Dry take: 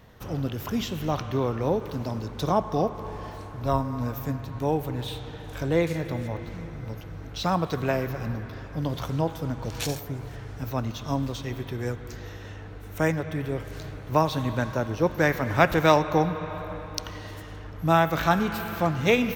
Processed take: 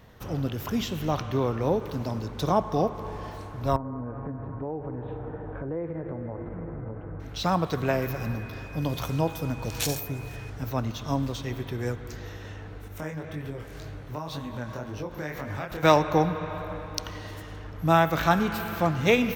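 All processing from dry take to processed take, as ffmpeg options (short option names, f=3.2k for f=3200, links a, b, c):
-filter_complex "[0:a]asettb=1/sr,asplit=3[a][b][c];[a]atrim=end=3.764[d];[b]atrim=start=3.76:end=7.2,asetpts=PTS-STARTPTS,afade=t=in:d=0.004:c=qsin,afade=t=out:st=3.436:d=0.004:c=qsin,lowpass=f=1.6k:w=0.5412,lowpass=f=1.6k:w=1.3066,acompressor=threshold=-33dB:ratio=5:attack=3.2:release=140:knee=1:detection=peak,equalizer=f=410:t=o:w=1.8:g=5.5[e];[c]atrim=start=7.196[f];[d][e]acrossfade=d=0.004:c1=hsin:c2=qsin[g];[g][f]acrossfade=d=0.004:c1=qsin:c2=hsin,asettb=1/sr,asplit=3[h][i][j];[h]atrim=end=8.024[k];[i]atrim=start=8.02:end=10.5,asetpts=PTS-STARTPTS,afade=t=in:d=0.004:c=qsin,afade=t=out:st=2.476:d=0.004:c=qsin,aeval=exprs='val(0)+0.00398*sin(2*PI*2500*n/s)':c=same,highshelf=f=6.6k:g=8[l];[j]atrim=start=10.496[m];[k][l]acrossfade=d=0.004:c1=hsin:c2=qsin[n];[n][m]acrossfade=d=0.004:c1=qsin:c2=hsin,asettb=1/sr,asplit=3[o][p][q];[o]atrim=end=12.884[r];[p]atrim=start=12.88:end=15.83,asetpts=PTS-STARTPTS,afade=t=in:d=0.004:c=qsin,afade=t=out:st=2.946:d=0.004:c=qsin,acompressor=threshold=-28dB:ratio=4:attack=3.2:release=140:knee=1:detection=peak,flanger=delay=20:depth=6.7:speed=1.9[s];[q]atrim=start=15.826[t];[r][s]acrossfade=d=0.004:c1=hsin:c2=qsin[u];[u][t]acrossfade=d=0.004:c1=qsin:c2=hsin"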